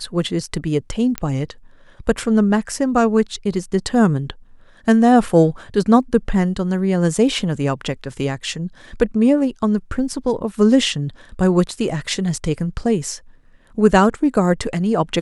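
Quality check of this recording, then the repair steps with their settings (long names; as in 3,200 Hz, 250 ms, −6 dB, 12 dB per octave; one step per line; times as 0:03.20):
0:01.18: click −6 dBFS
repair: click removal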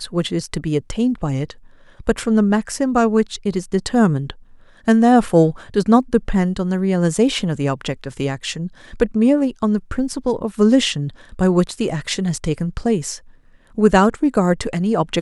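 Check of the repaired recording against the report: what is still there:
none of them is left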